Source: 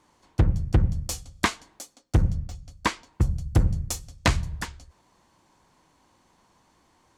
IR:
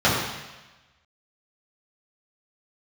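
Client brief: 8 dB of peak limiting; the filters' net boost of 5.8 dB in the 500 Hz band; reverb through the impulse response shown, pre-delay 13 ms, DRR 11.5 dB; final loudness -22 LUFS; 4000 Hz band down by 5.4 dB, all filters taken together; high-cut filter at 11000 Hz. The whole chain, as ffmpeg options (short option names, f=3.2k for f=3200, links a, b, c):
-filter_complex "[0:a]lowpass=11k,equalizer=f=500:t=o:g=7.5,equalizer=f=4k:t=o:g=-7,alimiter=limit=-15dB:level=0:latency=1,asplit=2[a][b];[1:a]atrim=start_sample=2205,adelay=13[c];[b][c]afir=irnorm=-1:irlink=0,volume=-32.5dB[d];[a][d]amix=inputs=2:normalize=0,volume=7.5dB"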